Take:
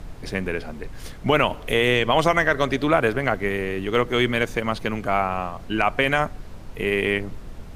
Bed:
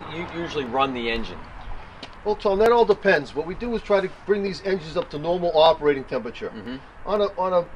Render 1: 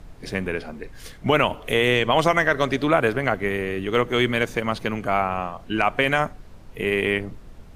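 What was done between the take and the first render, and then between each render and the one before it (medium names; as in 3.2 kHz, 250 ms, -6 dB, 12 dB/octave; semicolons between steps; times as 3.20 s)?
noise print and reduce 6 dB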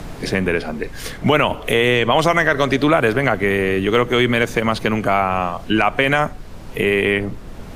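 in parallel at +2.5 dB: peak limiter -14.5 dBFS, peak gain reduction 9 dB; on the sum: three bands compressed up and down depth 40%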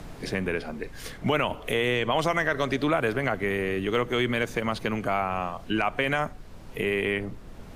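trim -9.5 dB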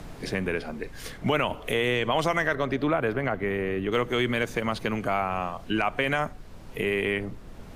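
2.55–3.92 s: peaking EQ 8.2 kHz -11.5 dB 2.3 oct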